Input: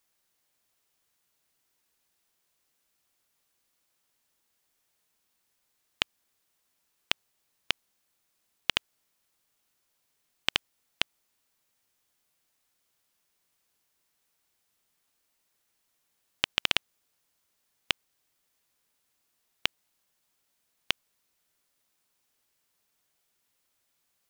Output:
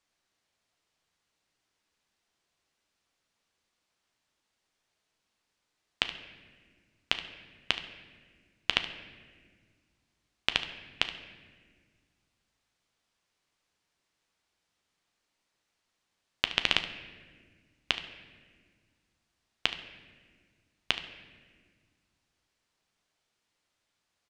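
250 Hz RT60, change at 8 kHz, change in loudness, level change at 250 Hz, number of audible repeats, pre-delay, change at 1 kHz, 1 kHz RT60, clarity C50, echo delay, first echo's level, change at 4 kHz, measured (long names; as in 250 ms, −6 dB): 2.4 s, −4.5 dB, 0.0 dB, +1.5 dB, 1, 10 ms, +0.5 dB, 1.3 s, 9.5 dB, 73 ms, −14.5 dB, 0.0 dB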